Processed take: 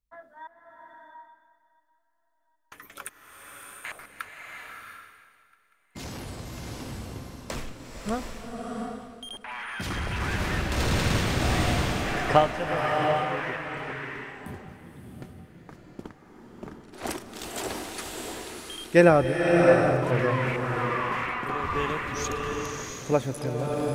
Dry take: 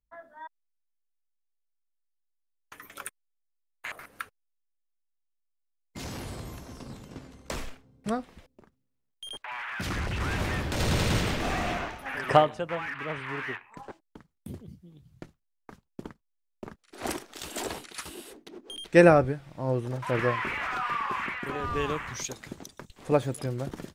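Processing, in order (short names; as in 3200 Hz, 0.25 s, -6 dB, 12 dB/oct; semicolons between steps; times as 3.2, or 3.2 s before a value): 20.56–21.12 LPF 1300 Hz 24 dB/oct; swung echo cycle 0.758 s, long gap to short 3:1, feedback 48%, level -24 dB; bloom reverb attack 0.71 s, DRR 0.5 dB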